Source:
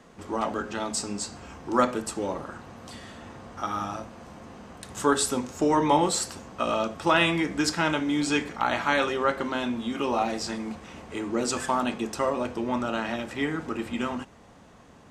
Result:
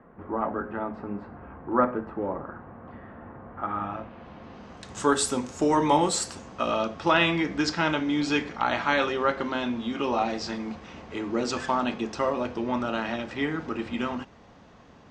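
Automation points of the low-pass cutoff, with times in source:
low-pass 24 dB/octave
3.45 s 1.7 kHz
4.41 s 4.2 kHz
5.17 s 10 kHz
6.30 s 10 kHz
6.70 s 5.8 kHz

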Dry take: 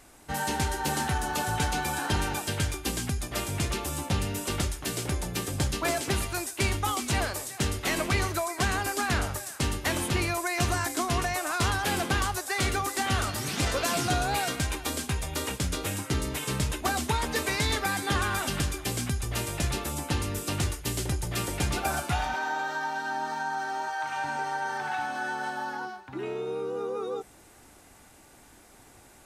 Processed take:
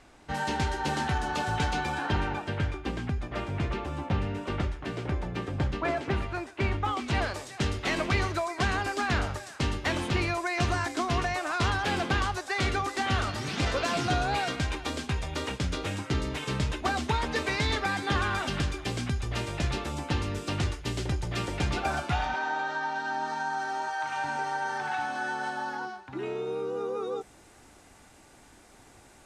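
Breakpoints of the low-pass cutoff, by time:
1.75 s 4.7 kHz
2.38 s 2.2 kHz
6.78 s 2.2 kHz
7.33 s 4.7 kHz
22.84 s 4.7 kHz
23.52 s 8.5 kHz

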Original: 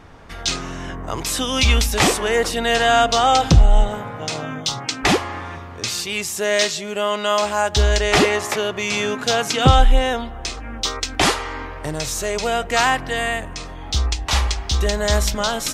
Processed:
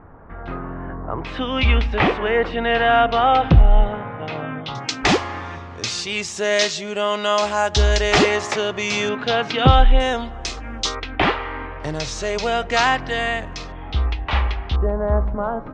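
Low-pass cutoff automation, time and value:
low-pass 24 dB/octave
1.5 kHz
from 1.24 s 2.8 kHz
from 4.75 s 6.8 kHz
from 9.09 s 3.8 kHz
from 10.00 s 7.5 kHz
from 10.95 s 3 kHz
from 11.80 s 5.8 kHz
from 13.72 s 2.9 kHz
from 14.76 s 1.2 kHz

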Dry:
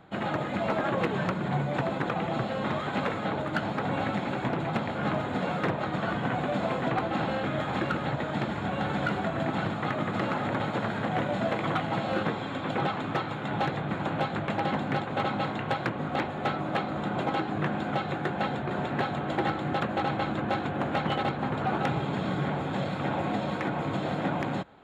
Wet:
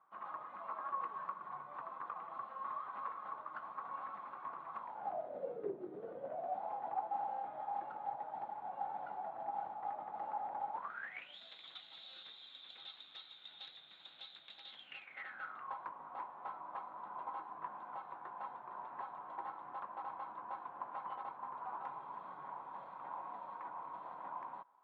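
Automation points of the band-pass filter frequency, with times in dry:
band-pass filter, Q 14
4.77 s 1.1 kHz
5.81 s 350 Hz
6.61 s 820 Hz
10.72 s 820 Hz
11.39 s 3.7 kHz
14.70 s 3.7 kHz
15.74 s 1 kHz

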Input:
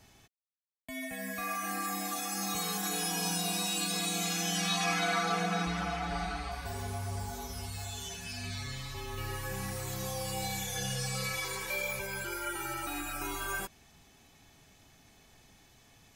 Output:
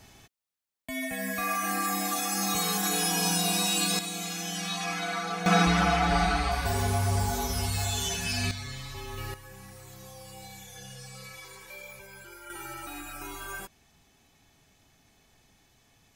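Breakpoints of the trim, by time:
+6 dB
from 3.99 s -2 dB
from 5.46 s +10.5 dB
from 8.51 s +1 dB
from 9.34 s -10 dB
from 12.50 s -3 dB

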